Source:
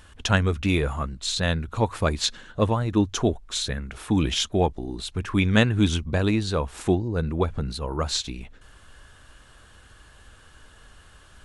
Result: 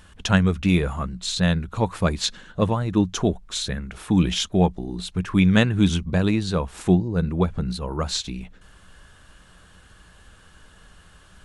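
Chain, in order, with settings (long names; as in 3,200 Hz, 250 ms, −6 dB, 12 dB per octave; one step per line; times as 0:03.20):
parametric band 180 Hz +12.5 dB 0.21 octaves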